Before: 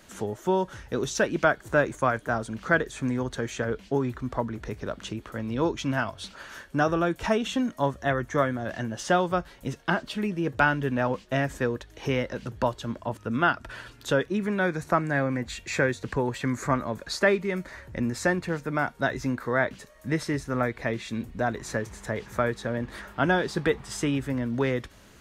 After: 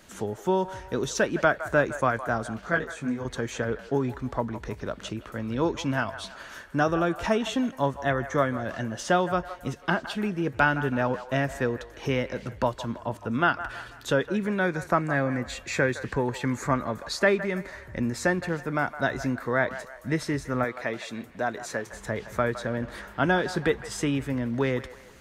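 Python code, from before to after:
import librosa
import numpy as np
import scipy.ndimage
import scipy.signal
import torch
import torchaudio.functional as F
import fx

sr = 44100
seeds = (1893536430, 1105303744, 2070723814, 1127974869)

y = fx.highpass(x, sr, hz=340.0, slope=6, at=(20.64, 21.94))
y = fx.echo_wet_bandpass(y, sr, ms=163, feedback_pct=42, hz=1100.0, wet_db=-12)
y = fx.detune_double(y, sr, cents=28, at=(2.61, 3.25))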